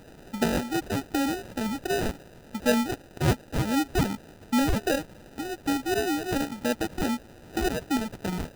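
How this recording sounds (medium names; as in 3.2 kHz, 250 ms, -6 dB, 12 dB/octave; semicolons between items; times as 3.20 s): a quantiser's noise floor 8-bit, dither triangular; phasing stages 4, 2.7 Hz, lowest notch 430–1400 Hz; aliases and images of a low sample rate 1.1 kHz, jitter 0%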